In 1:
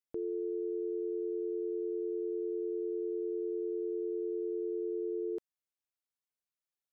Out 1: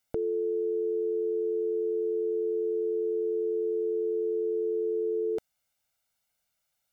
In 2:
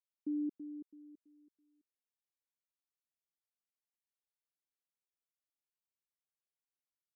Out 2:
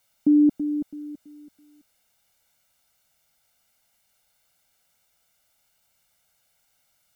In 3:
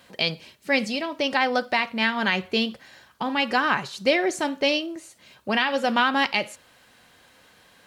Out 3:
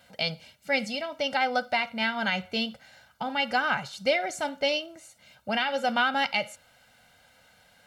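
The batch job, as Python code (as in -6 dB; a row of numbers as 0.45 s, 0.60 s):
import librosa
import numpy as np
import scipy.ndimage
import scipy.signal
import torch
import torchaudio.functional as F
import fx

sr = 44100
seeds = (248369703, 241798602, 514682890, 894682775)

y = x + 0.71 * np.pad(x, (int(1.4 * sr / 1000.0), 0))[:len(x)]
y = y * 10.0 ** (-30 / 20.0) / np.sqrt(np.mean(np.square(y)))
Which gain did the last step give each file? +13.0 dB, +24.5 dB, -5.5 dB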